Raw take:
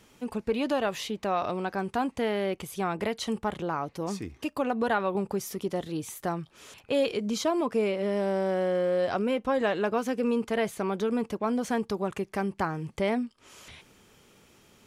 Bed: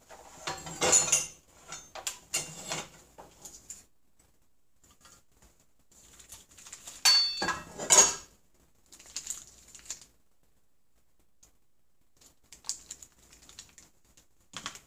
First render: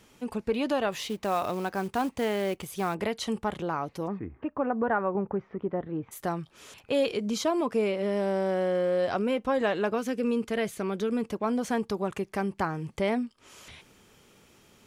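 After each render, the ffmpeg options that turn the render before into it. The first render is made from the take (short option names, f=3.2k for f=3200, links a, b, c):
-filter_complex "[0:a]asettb=1/sr,asplit=3[a][b][c];[a]atrim=end=0.924[d];[b]atrim=start=0.92:end=2.95,asetpts=PTS-STARTPTS,afade=t=in:d=0.004:c=qsin,afade=t=out:st=2.026:d=0.004:c=qsin,acrusher=bits=5:mode=log:mix=0:aa=0.000001[e];[c]atrim=start=2.946[f];[d][e]acrossfade=d=0.004:c1=hsin:c2=qsin[g];[g][f]acrossfade=d=0.004:c1=qsin:c2=hsin,asplit=3[h][i][j];[h]afade=t=out:st=4.06:d=0.02[k];[i]lowpass=f=1.8k:w=0.5412,lowpass=f=1.8k:w=1.3066,afade=t=in:st=4.06:d=0.02,afade=t=out:st=6.11:d=0.02[l];[j]afade=t=in:st=6.11:d=0.02[m];[k][l][m]amix=inputs=3:normalize=0,asettb=1/sr,asplit=3[n][o][p];[n]atrim=end=9.954[q];[o]atrim=start=9.95:end=11.29,asetpts=PTS-STARTPTS,afade=t=in:d=0.004:c=qsin,afade=t=out:st=1.336:d=0.004:c=qsin,equalizer=f=870:w=1.6:g=-6.5[r];[p]atrim=start=11.286[s];[q][r]acrossfade=d=0.004:c1=hsin:c2=qsin[t];[t][s]acrossfade=d=0.004:c1=qsin:c2=hsin"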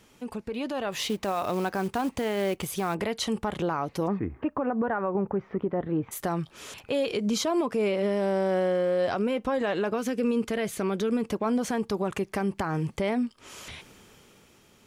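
-af "alimiter=level_in=1.5dB:limit=-24dB:level=0:latency=1:release=125,volume=-1.5dB,dynaudnorm=f=100:g=17:m=6.5dB"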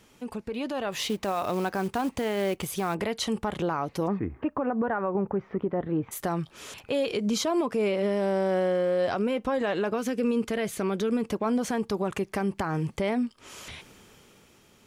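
-af anull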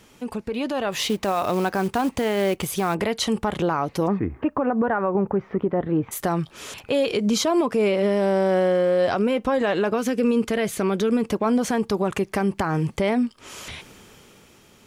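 -af "volume=5.5dB"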